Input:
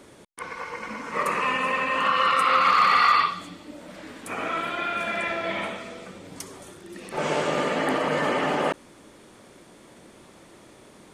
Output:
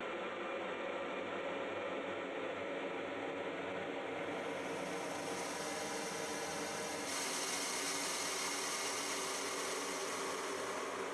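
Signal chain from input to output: local Wiener filter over 9 samples; low-pass that closes with the level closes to 1.4 kHz, closed at -18.5 dBFS; three-band isolator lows -19 dB, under 340 Hz, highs -12 dB, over 4 kHz; Paulstretch 32×, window 0.25 s, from 6.16 s; gate with hold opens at -41 dBFS; peak limiter -41 dBFS, peak gain reduction 7 dB; treble shelf 2.9 kHz +11.5 dB; echo that smears into a reverb 475 ms, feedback 49%, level -8.5 dB; spectral freeze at 5.59 s, 1.48 s; trim +6.5 dB

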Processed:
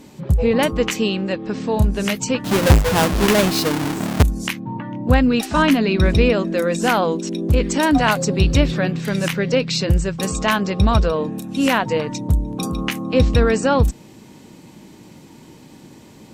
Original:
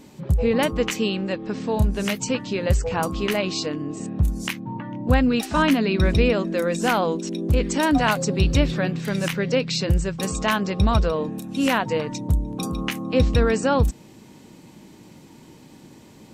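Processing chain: 2.44–4.23 s: square wave that keeps the level; Chebyshev shaper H 6 -35 dB, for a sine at -4.5 dBFS; trim +3.5 dB

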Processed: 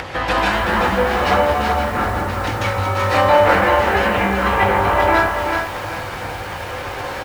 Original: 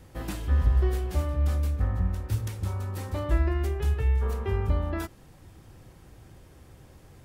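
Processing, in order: phaser 0.49 Hz, delay 3.9 ms, feedback 24%; sine folder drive 12 dB, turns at -11 dBFS; doubling 20 ms -11 dB; reverberation RT60 0.40 s, pre-delay 136 ms, DRR -8.5 dB; compression 4:1, threshold -10 dBFS, peak gain reduction 9.5 dB; treble shelf 8.8 kHz -11.5 dB; upward compressor, threshold -16 dBFS; high-pass 77 Hz 6 dB/octave; three-band isolator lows -18 dB, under 600 Hz, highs -16 dB, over 4.6 kHz; bit-crushed delay 380 ms, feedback 35%, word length 7-bit, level -5 dB; trim +7.5 dB

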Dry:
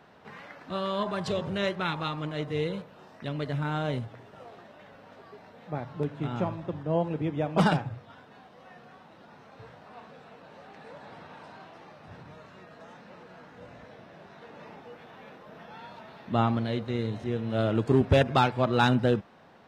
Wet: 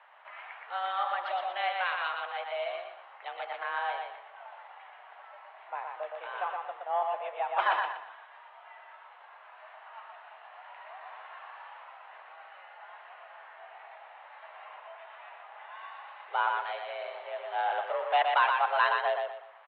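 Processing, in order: saturation -12 dBFS, distortion -23 dB; on a send: feedback delay 120 ms, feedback 33%, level -4 dB; on the sum: mistuned SSB +180 Hz 480–3000 Hz

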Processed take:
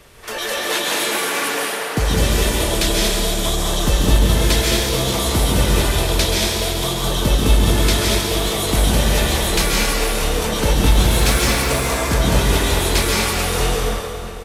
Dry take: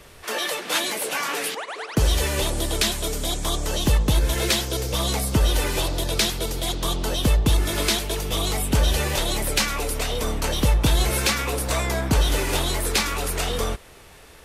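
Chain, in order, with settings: echo from a far wall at 110 m, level -14 dB; 10.92–11.65 s: added noise white -47 dBFS; plate-style reverb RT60 2.2 s, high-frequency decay 0.8×, pre-delay 120 ms, DRR -4.5 dB

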